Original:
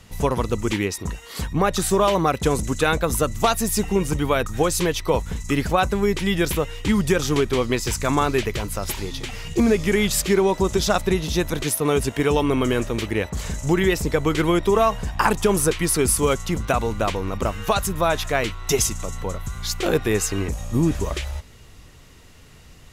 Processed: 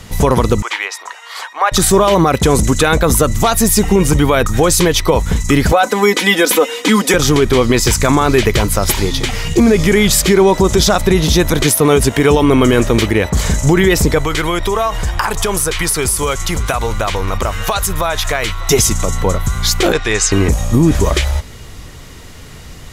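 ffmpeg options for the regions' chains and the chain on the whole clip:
-filter_complex "[0:a]asettb=1/sr,asplit=3[a][b][c];[a]atrim=end=0.624[d];[b]atrim=start=0.62:end=1.72,asetpts=PTS-STARTPTS,afade=t=in:d=0.004:c=qsin,afade=t=out:st=1.096:d=0.004:c=qsin,highpass=f=770:w=0.5412,highpass=f=770:w=1.3066,aemphasis=mode=reproduction:type=75kf[e];[c]atrim=start=1.716[f];[d][e]acrossfade=d=0.004:c1=hsin:c2=qsin[g];[g][f]acrossfade=d=0.004:c1=qsin:c2=hsin,asettb=1/sr,asplit=3[h][i][j];[h]atrim=end=5.724[k];[i]atrim=start=5.72:end=7.14,asetpts=PTS-STARTPTS,afade=t=in:d=0.004:c=qsin,afade=t=out:st=1.416:d=0.004:c=qsin,highpass=f=270:w=0.5412,highpass=f=270:w=1.3066,aecho=1:1:4:0.72,atrim=end_sample=62622[l];[j]atrim=start=7.136[m];[k][l]acrossfade=d=0.004:c1=hsin:c2=qsin[n];[n][m]acrossfade=d=0.004:c1=qsin:c2=hsin,asettb=1/sr,asplit=3[o][p][q];[o]atrim=end=14.184[r];[p]atrim=start=14.18:end=18.69,asetpts=PTS-STARTPTS,afade=t=in:d=0.004:c=qsin,afade=t=out:st=4.506:d=0.004:c=qsin,equalizer=f=240:t=o:w=2.1:g=-11,acompressor=threshold=-25dB:ratio=6:attack=3.2:release=140:knee=1:detection=peak,aecho=1:1:598:0.1,atrim=end_sample=198891[s];[q]atrim=start=18.686[t];[r][s]acrossfade=d=0.004:c1=hsin:c2=qsin[u];[u][t]acrossfade=d=0.004:c1=qsin:c2=hsin,asettb=1/sr,asplit=3[v][w][x];[v]atrim=end=19.924[y];[w]atrim=start=19.92:end=20.32,asetpts=PTS-STARTPTS,afade=t=in:d=0.004:c=qsin,afade=t=out:st=0.396:d=0.004:c=qsin,lowpass=f=7.7k:w=0.5412,lowpass=f=7.7k:w=1.3066,equalizer=f=200:w=0.31:g=-14[z];[x]atrim=start=20.316[aa];[y][z]acrossfade=d=0.004:c1=hsin:c2=qsin[ab];[ab][aa]acrossfade=d=0.004:c1=qsin:c2=hsin,bandreject=f=2.7k:w=16,alimiter=level_in=14.5dB:limit=-1dB:release=50:level=0:latency=1,volume=-1dB"

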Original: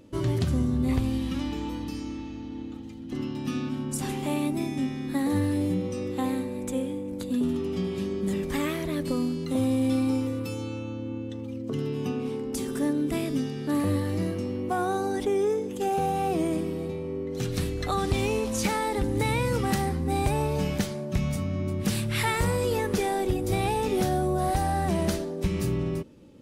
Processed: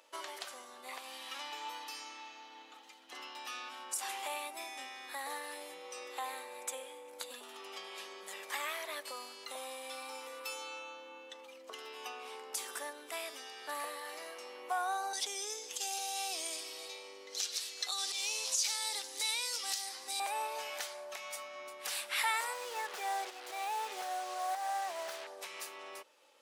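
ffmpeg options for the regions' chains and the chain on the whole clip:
-filter_complex "[0:a]asettb=1/sr,asplit=3[a][b][c];[a]atrim=end=15.134[d];[b]atrim=start=15.13:end=20.2,asetpts=PTS-STARTPTS,afade=t=in:d=0.004:c=qsin,afade=t=out:st=5.066:d=0.004:c=qsin,acrossover=split=380|3000[e][f][g];[f]acompressor=threshold=-44dB:ratio=3:attack=3.2:release=140:knee=2.83:detection=peak[h];[e][h][g]amix=inputs=3:normalize=0,equalizer=f=5.3k:w=0.71:g=14[i];[c]atrim=start=20.196[j];[d][i]acrossfade=d=0.004:c1=hsin:c2=qsin[k];[k][j]acrossfade=d=0.004:c1=qsin:c2=hsin,asettb=1/sr,asplit=3[l][m][n];[l]atrim=end=22.534[o];[m]atrim=start=22.53:end=25.27,asetpts=PTS-STARTPTS,afade=t=in:d=0.004:c=qsin,afade=t=out:st=2.736:d=0.004:c=qsin,lowpass=f=2.3k:p=1,lowshelf=f=66:g=11.5,acrusher=bits=5:mix=0:aa=0.5[p];[n]atrim=start=25.266[q];[o][p]acrossfade=d=0.004:c1=hsin:c2=qsin[r];[r][q]acrossfade=d=0.004:c1=qsin:c2=hsin,alimiter=limit=-22dB:level=0:latency=1:release=422,highpass=f=710:w=0.5412,highpass=f=710:w=1.3066,volume=1dB"

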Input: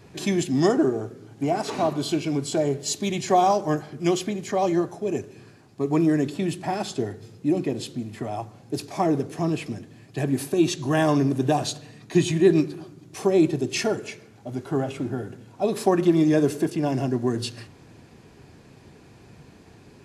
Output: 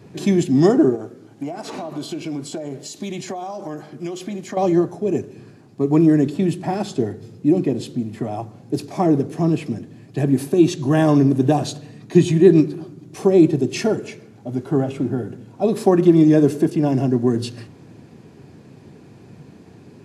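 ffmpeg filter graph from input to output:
-filter_complex "[0:a]asettb=1/sr,asplit=3[a][b][c];[a]atrim=end=0.954[d];[b]atrim=start=0.95:end=4.57,asetpts=PTS-STARTPTS,afade=t=in:d=0.004:c=qsin,afade=t=out:st=3.616:d=0.004:c=qsin,equalizer=f=98:t=o:w=2.8:g=-9.5,bandreject=f=420:w=11,acompressor=threshold=-29dB:ratio=12:attack=3.2:release=140:knee=1:detection=peak[e];[c]atrim=start=4.566[f];[d][e]acrossfade=d=0.004:c1=hsin:c2=qsin[g];[g][f]acrossfade=d=0.004:c1=qsin:c2=hsin,highpass=130,lowshelf=f=480:g=11,volume=-1dB"

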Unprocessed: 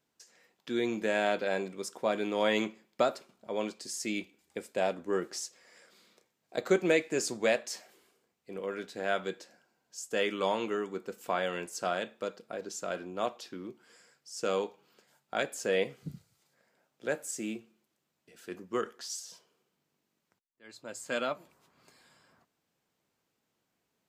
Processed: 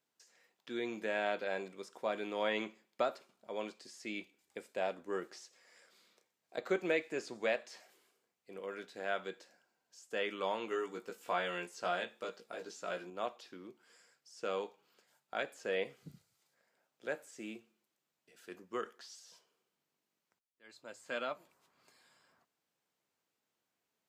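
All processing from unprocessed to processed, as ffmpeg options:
-filter_complex "[0:a]asettb=1/sr,asplit=3[a][b][c];[a]atrim=end=10.704[d];[b]atrim=start=10.7:end=13.1,asetpts=PTS-STARTPTS,afade=t=in:d=0.004:c=qsin,afade=t=out:st=2.396:d=0.004:c=qsin,equalizer=f=9.3k:w=0.35:g=5.5,asplit=2[e][f];[f]adelay=17,volume=-3dB[g];[e][g]amix=inputs=2:normalize=0,atrim=end_sample=105840[h];[c]atrim=start=13.096[i];[d][h]acrossfade=d=0.004:c1=hsin:c2=qsin[j];[j][i]acrossfade=d=0.004:c1=qsin:c2=hsin,acrossover=split=4000[k][l];[l]acompressor=threshold=-55dB:ratio=4:attack=1:release=60[m];[k][m]amix=inputs=2:normalize=0,lowshelf=f=290:g=-9,volume=-4.5dB"

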